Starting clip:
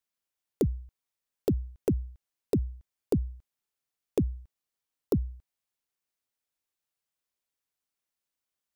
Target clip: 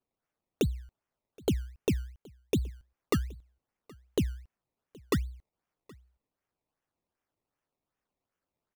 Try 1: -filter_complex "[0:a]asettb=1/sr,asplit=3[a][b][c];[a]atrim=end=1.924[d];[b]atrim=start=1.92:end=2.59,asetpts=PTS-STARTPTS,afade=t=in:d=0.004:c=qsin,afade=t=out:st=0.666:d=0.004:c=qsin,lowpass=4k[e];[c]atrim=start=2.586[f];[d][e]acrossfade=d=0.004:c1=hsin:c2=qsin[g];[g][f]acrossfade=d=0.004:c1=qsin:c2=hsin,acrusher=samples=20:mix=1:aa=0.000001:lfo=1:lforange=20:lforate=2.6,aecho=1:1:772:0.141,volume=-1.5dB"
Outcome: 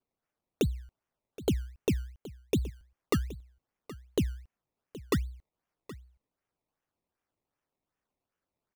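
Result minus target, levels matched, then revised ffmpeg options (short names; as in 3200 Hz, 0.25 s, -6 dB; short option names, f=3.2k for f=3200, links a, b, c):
echo-to-direct +8 dB
-filter_complex "[0:a]asettb=1/sr,asplit=3[a][b][c];[a]atrim=end=1.924[d];[b]atrim=start=1.92:end=2.59,asetpts=PTS-STARTPTS,afade=t=in:d=0.004:c=qsin,afade=t=out:st=0.666:d=0.004:c=qsin,lowpass=4k[e];[c]atrim=start=2.586[f];[d][e]acrossfade=d=0.004:c1=hsin:c2=qsin[g];[g][f]acrossfade=d=0.004:c1=qsin:c2=hsin,acrusher=samples=20:mix=1:aa=0.000001:lfo=1:lforange=20:lforate=2.6,aecho=1:1:772:0.0562,volume=-1.5dB"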